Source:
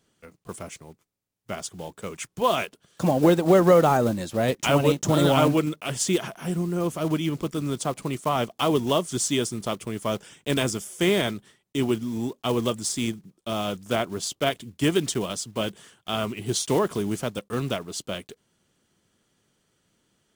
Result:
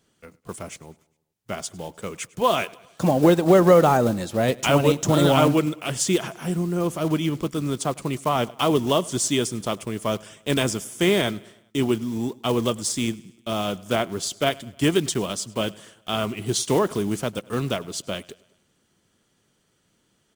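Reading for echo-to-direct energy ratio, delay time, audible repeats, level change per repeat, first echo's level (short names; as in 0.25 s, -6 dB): -22.0 dB, 0.102 s, 3, -5.5 dB, -23.5 dB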